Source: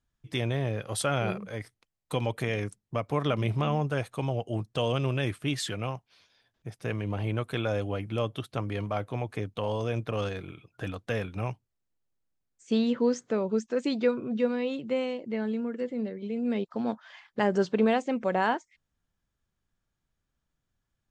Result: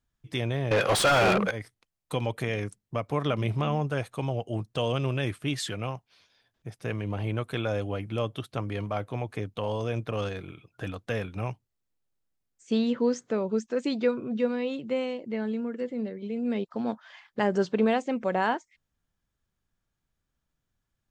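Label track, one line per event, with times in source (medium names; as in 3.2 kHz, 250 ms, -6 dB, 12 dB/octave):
0.710000	1.510000	overdrive pedal drive 31 dB, tone 3.2 kHz, clips at -13.5 dBFS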